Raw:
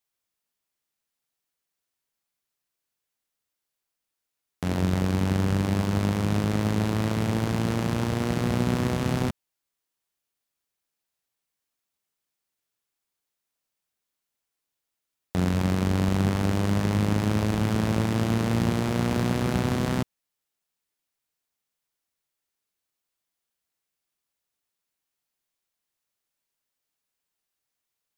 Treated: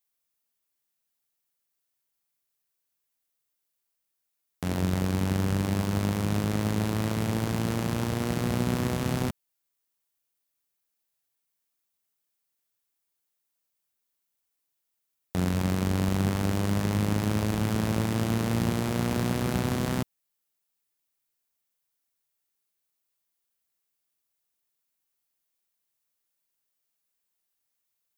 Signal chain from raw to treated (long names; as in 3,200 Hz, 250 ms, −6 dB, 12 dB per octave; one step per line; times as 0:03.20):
high-shelf EQ 9,500 Hz +9.5 dB
level −2.5 dB